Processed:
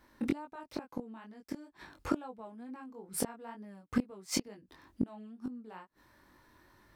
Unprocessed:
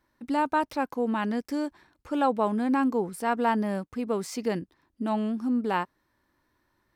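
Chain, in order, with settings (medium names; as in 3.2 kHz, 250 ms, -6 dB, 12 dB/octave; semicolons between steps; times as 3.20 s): inverted gate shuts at -24 dBFS, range -31 dB; chorus 2.2 Hz, delay 19.5 ms, depth 3.4 ms; trim +12 dB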